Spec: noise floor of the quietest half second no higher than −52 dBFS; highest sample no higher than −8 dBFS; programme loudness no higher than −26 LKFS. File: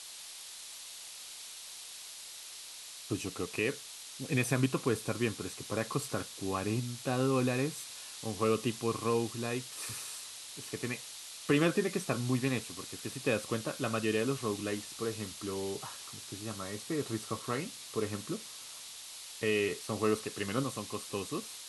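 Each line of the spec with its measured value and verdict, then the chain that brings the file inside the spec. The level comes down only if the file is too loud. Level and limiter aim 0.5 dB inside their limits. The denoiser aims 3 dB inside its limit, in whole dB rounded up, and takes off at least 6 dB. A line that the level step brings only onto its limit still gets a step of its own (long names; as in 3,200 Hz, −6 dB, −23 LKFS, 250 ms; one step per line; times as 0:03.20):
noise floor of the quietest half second −47 dBFS: out of spec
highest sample −14.5 dBFS: in spec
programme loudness −35.0 LKFS: in spec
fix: broadband denoise 8 dB, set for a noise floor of −47 dBFS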